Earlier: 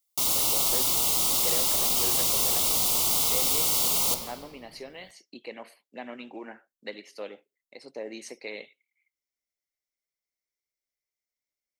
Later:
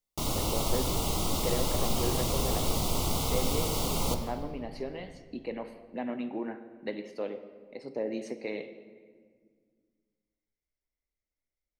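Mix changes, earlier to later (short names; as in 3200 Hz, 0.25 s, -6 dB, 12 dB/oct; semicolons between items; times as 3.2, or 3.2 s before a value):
speech: send on; master: add tilt -3.5 dB/oct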